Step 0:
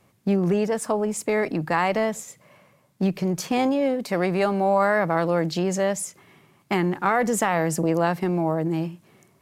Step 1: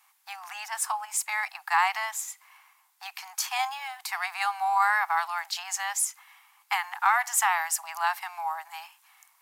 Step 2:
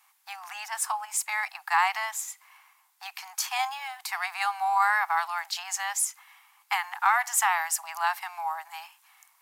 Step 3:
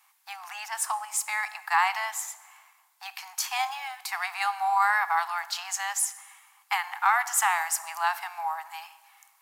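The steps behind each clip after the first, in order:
Butterworth high-pass 770 Hz 96 dB per octave; high-shelf EQ 12,000 Hz +11.5 dB; level +1 dB
no processing that can be heard
dense smooth reverb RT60 1.4 s, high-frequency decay 0.75×, DRR 13.5 dB

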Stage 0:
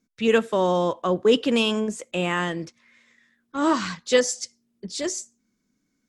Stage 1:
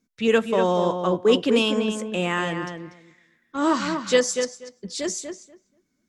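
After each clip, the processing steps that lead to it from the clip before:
feedback echo with a low-pass in the loop 241 ms, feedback 16%, low-pass 2,600 Hz, level −6.5 dB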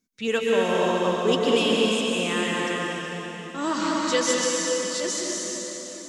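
high-shelf EQ 2,700 Hz +7.5 dB
dense smooth reverb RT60 4.1 s, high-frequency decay 0.9×, pre-delay 115 ms, DRR −3.5 dB
level −6.5 dB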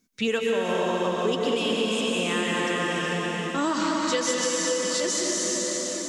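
downward compressor 6 to 1, threshold −30 dBFS, peak gain reduction 14 dB
level +7.5 dB

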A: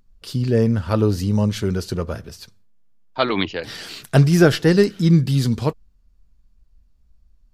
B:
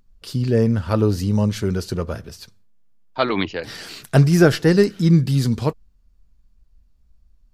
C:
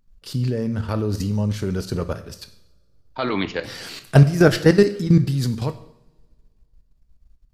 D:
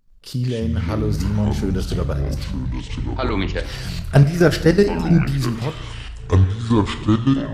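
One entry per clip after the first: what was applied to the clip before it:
dynamic equaliser 3,300 Hz, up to −4 dB, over −41 dBFS, Q 2.5
output level in coarse steps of 13 dB; coupled-rooms reverb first 0.68 s, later 2.3 s, from −24 dB, DRR 9.5 dB; level +3 dB
in parallel at −11.5 dB: soft clipping −12.5 dBFS, distortion −9 dB; on the sum: delay with pitch and tempo change per echo 102 ms, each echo −7 semitones, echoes 3; level −1.5 dB

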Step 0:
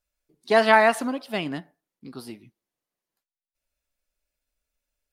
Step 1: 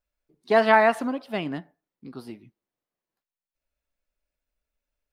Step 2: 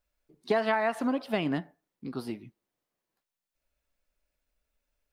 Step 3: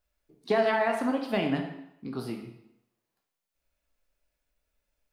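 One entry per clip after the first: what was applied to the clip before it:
parametric band 10,000 Hz −10 dB 2.5 octaves
downward compressor 8 to 1, threshold −27 dBFS, peak gain reduction 15 dB; level +3.5 dB
convolution reverb RT60 0.80 s, pre-delay 15 ms, DRR 3.5 dB

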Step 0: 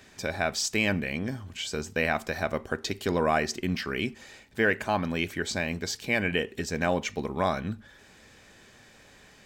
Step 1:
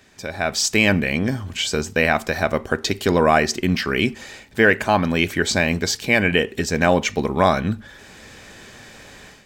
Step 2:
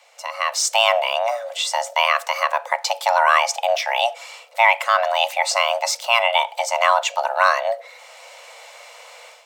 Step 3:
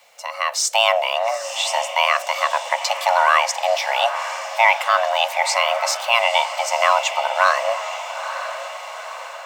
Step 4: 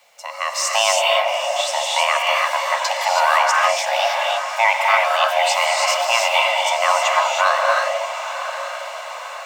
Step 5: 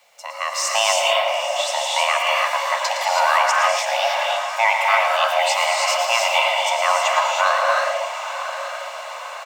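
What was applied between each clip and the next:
automatic gain control gain up to 12 dB
frequency shifter +460 Hz
bit-depth reduction 10 bits, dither none; feedback delay with all-pass diffusion 909 ms, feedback 52%, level −10 dB
reverb whose tail is shaped and stops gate 350 ms rising, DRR −1 dB; level −2 dB
single-tap delay 112 ms −9 dB; level −1.5 dB

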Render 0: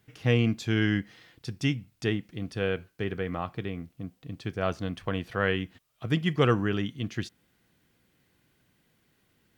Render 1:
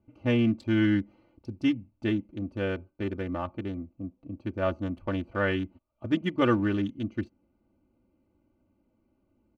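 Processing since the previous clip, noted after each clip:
adaptive Wiener filter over 25 samples
high-shelf EQ 2,400 Hz −9.5 dB
comb filter 3.4 ms, depth 91%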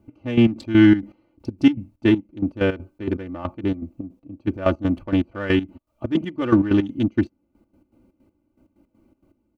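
parametric band 300 Hz +4.5 dB 0.46 octaves
in parallel at −8 dB: soft clipping −26 dBFS, distortion −8 dB
on the sum: gate pattern "x...x.x.xx." 161 BPM −12 dB
level +7.5 dB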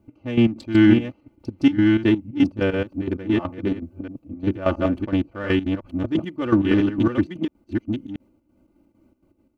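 delay that plays each chunk backwards 680 ms, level −3 dB
level −1.5 dB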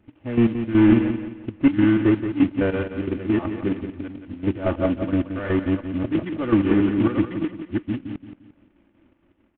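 variable-slope delta modulation 16 kbit/s
repeating echo 174 ms, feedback 35%, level −9 dB

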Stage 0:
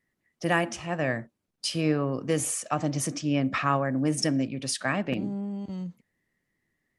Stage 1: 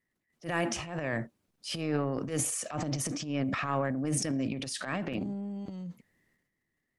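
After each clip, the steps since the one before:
transient designer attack −11 dB, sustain +10 dB
level −5 dB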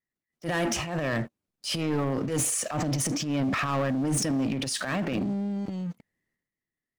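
leveller curve on the samples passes 3
level −4 dB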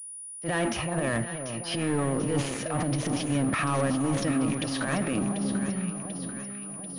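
delay that swaps between a low-pass and a high-pass 370 ms, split 1,100 Hz, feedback 74%, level −7 dB
switching amplifier with a slow clock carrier 9,700 Hz

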